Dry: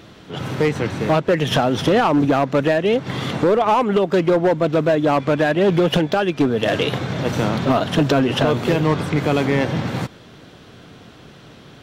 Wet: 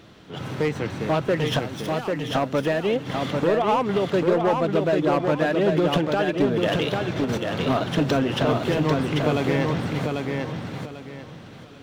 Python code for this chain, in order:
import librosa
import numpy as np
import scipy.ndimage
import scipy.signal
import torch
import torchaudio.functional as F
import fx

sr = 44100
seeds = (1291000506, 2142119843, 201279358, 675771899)

p1 = scipy.signal.medfilt(x, 3)
p2 = fx.pre_emphasis(p1, sr, coefficient=0.8, at=(1.59, 2.35))
p3 = fx.over_compress(p2, sr, threshold_db=-23.0, ratio=-0.5, at=(7.16, 7.62))
p4 = p3 + fx.echo_feedback(p3, sr, ms=793, feedback_pct=27, wet_db=-4, dry=0)
y = F.gain(torch.from_numpy(p4), -5.5).numpy()